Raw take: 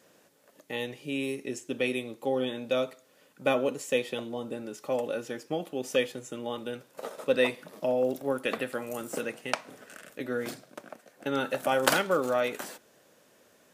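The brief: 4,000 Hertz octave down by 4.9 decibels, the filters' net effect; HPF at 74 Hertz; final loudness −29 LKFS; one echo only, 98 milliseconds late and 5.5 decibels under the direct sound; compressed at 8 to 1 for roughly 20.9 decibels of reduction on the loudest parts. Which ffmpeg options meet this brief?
ffmpeg -i in.wav -af "highpass=74,equalizer=frequency=4000:width_type=o:gain=-6.5,acompressor=threshold=-42dB:ratio=8,aecho=1:1:98:0.531,volume=17dB" out.wav

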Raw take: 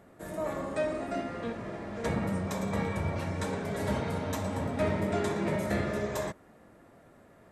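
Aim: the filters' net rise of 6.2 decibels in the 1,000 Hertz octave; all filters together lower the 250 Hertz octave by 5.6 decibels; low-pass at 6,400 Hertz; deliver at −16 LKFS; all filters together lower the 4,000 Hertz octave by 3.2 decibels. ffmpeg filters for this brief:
ffmpeg -i in.wav -af "lowpass=6400,equalizer=frequency=250:width_type=o:gain=-8.5,equalizer=frequency=1000:width_type=o:gain=8.5,equalizer=frequency=4000:width_type=o:gain=-4,volume=16dB" out.wav

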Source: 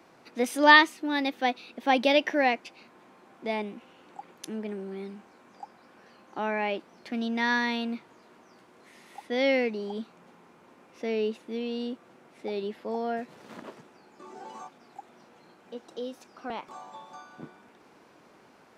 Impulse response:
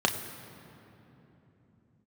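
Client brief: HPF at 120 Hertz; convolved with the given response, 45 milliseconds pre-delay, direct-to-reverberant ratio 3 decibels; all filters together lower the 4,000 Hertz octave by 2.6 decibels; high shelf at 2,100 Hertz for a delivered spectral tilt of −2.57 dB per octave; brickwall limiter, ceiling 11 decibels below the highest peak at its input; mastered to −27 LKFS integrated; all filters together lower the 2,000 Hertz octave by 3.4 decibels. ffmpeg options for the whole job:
-filter_complex "[0:a]highpass=120,equalizer=frequency=2000:width_type=o:gain=-6,highshelf=frequency=2100:gain=7.5,equalizer=frequency=4000:width_type=o:gain=-8,alimiter=limit=-15.5dB:level=0:latency=1,asplit=2[link_01][link_02];[1:a]atrim=start_sample=2205,adelay=45[link_03];[link_02][link_03]afir=irnorm=-1:irlink=0,volume=-15dB[link_04];[link_01][link_04]amix=inputs=2:normalize=0,volume=3dB"

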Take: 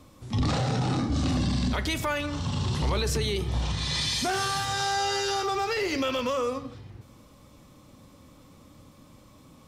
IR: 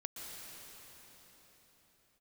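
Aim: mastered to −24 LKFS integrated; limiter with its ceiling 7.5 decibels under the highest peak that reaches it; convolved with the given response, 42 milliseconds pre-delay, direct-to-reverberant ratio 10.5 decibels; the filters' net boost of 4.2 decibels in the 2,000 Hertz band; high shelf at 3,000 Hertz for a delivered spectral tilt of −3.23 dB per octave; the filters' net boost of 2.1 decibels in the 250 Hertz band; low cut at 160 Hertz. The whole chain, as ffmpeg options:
-filter_complex "[0:a]highpass=160,equalizer=frequency=250:width_type=o:gain=3.5,equalizer=frequency=2000:width_type=o:gain=3,highshelf=frequency=3000:gain=6.5,alimiter=limit=-20.5dB:level=0:latency=1,asplit=2[link_01][link_02];[1:a]atrim=start_sample=2205,adelay=42[link_03];[link_02][link_03]afir=irnorm=-1:irlink=0,volume=-9.5dB[link_04];[link_01][link_04]amix=inputs=2:normalize=0,volume=4.5dB"

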